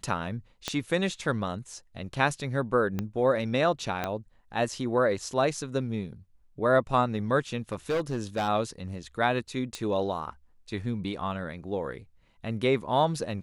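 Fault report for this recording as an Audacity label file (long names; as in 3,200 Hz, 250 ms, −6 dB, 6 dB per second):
0.680000	0.680000	click −14 dBFS
2.990000	2.990000	click −17 dBFS
4.040000	4.040000	click −15 dBFS
7.720000	8.490000	clipping −24 dBFS
9.750000	9.750000	click −19 dBFS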